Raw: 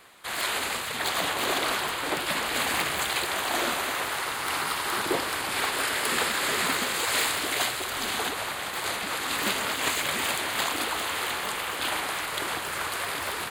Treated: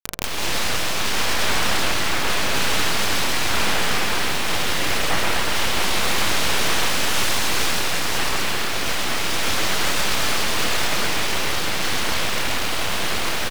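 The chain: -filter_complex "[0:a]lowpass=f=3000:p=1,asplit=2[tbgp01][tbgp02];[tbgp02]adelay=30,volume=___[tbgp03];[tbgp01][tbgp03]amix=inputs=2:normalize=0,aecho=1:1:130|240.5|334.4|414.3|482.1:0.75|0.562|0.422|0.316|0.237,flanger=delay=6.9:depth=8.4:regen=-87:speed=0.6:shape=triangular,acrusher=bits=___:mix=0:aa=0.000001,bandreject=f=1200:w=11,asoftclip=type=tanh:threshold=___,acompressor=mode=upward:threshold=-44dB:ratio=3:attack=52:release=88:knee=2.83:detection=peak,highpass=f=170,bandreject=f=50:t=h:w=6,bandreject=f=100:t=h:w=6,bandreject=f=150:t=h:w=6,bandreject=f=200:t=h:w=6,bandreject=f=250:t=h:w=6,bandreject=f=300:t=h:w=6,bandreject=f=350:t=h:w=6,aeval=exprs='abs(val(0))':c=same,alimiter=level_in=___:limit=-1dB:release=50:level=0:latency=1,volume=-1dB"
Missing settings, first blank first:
-5dB, 7, -23.5dB, 15dB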